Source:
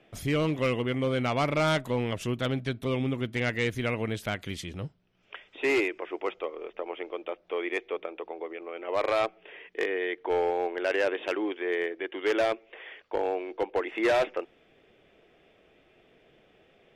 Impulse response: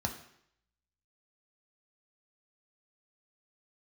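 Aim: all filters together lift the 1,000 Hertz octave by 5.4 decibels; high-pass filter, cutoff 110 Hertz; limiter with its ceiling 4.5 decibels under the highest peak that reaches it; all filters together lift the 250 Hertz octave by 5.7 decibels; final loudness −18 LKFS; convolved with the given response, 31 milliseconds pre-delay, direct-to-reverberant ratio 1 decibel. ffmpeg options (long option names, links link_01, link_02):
-filter_complex "[0:a]highpass=110,equalizer=frequency=250:width_type=o:gain=7,equalizer=frequency=1000:width_type=o:gain=7,alimiter=limit=-15.5dB:level=0:latency=1,asplit=2[link_01][link_02];[1:a]atrim=start_sample=2205,adelay=31[link_03];[link_02][link_03]afir=irnorm=-1:irlink=0,volume=-5dB[link_04];[link_01][link_04]amix=inputs=2:normalize=0,volume=6.5dB"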